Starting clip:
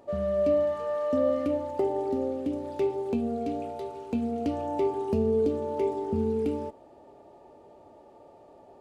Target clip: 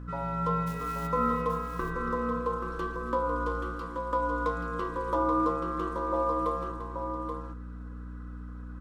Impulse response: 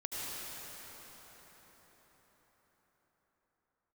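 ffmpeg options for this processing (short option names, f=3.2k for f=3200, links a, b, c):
-filter_complex "[0:a]aecho=1:1:4:0.69,aeval=exprs='val(0)*sin(2*PI*760*n/s)':c=same,asplit=3[a][b][c];[a]afade=t=out:st=0.66:d=0.02[d];[b]acrusher=bits=3:mode=log:mix=0:aa=0.000001,afade=t=in:st=0.66:d=0.02,afade=t=out:st=1.06:d=0.02[e];[c]afade=t=in:st=1.06:d=0.02[f];[d][e][f]amix=inputs=3:normalize=0,aeval=exprs='val(0)+0.0126*(sin(2*PI*60*n/s)+sin(2*PI*2*60*n/s)/2+sin(2*PI*3*60*n/s)/3+sin(2*PI*4*60*n/s)/4+sin(2*PI*5*60*n/s)/5)':c=same,aecho=1:1:274|345|678|830:0.133|0.237|0.119|0.447,volume=-1.5dB"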